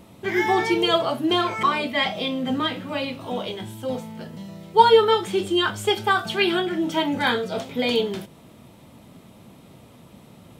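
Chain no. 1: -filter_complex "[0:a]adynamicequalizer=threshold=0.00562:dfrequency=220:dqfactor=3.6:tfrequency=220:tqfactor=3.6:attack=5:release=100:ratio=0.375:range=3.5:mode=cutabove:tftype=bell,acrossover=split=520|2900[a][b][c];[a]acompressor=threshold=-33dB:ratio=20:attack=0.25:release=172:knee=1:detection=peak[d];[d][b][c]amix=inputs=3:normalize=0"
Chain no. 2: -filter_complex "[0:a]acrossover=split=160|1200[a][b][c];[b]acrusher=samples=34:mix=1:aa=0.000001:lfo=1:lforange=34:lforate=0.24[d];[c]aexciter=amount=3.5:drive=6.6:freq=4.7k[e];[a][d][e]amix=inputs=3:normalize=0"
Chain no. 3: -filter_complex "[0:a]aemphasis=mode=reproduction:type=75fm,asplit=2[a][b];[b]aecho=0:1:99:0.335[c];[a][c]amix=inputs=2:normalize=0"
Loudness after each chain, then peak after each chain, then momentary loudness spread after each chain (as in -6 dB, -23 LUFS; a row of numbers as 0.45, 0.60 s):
-24.5, -22.5, -22.0 LUFS; -3.5, -3.0, -2.5 dBFS; 13, 10, 13 LU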